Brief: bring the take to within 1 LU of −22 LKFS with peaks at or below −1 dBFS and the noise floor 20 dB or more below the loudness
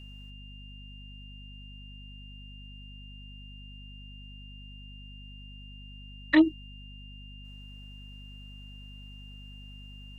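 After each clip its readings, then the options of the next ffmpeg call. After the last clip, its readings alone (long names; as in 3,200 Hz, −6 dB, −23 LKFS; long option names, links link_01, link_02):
mains hum 50 Hz; hum harmonics up to 250 Hz; level of the hum −44 dBFS; interfering tone 2,800 Hz; level of the tone −50 dBFS; integrated loudness −24.5 LKFS; sample peak −10.0 dBFS; target loudness −22.0 LKFS
→ -af "bandreject=frequency=50:width_type=h:width=6,bandreject=frequency=100:width_type=h:width=6,bandreject=frequency=150:width_type=h:width=6,bandreject=frequency=200:width_type=h:width=6,bandreject=frequency=250:width_type=h:width=6"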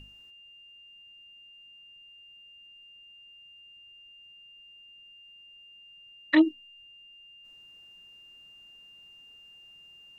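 mains hum none found; interfering tone 2,800 Hz; level of the tone −50 dBFS
→ -af "bandreject=frequency=2800:width=30"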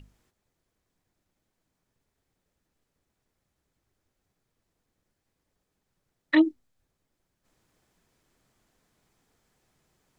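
interfering tone none found; integrated loudness −24.5 LKFS; sample peak −10.0 dBFS; target loudness −22.0 LKFS
→ -af "volume=2.5dB"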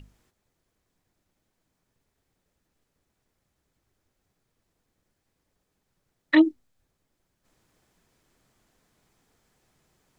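integrated loudness −22.0 LKFS; sample peak −7.5 dBFS; background noise floor −79 dBFS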